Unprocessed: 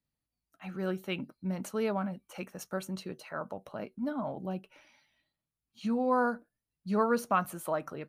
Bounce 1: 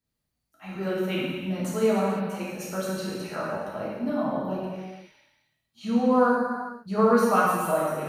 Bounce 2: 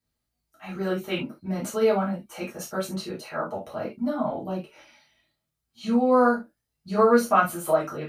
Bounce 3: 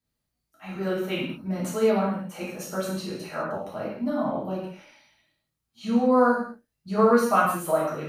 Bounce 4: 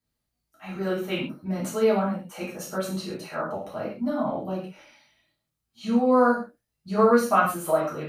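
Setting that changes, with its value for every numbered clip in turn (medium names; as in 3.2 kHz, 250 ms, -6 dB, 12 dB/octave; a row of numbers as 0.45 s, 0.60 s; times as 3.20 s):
gated-style reverb, gate: 530 ms, 100 ms, 240 ms, 160 ms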